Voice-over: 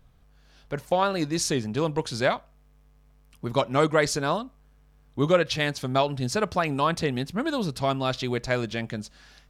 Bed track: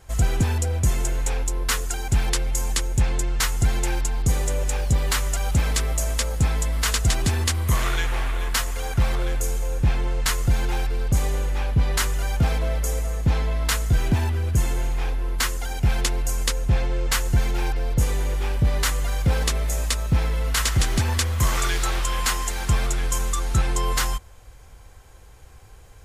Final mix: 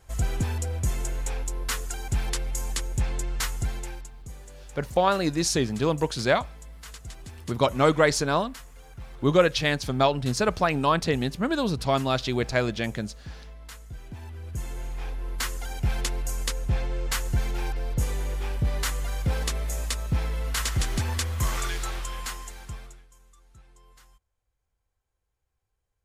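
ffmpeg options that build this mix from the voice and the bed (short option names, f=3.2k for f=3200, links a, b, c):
-filter_complex "[0:a]adelay=4050,volume=1.5dB[a];[1:a]volume=9.5dB,afade=t=out:st=3.44:d=0.69:silence=0.177828,afade=t=in:st=14.1:d=1.48:silence=0.16788,afade=t=out:st=21.48:d=1.58:silence=0.0421697[b];[a][b]amix=inputs=2:normalize=0"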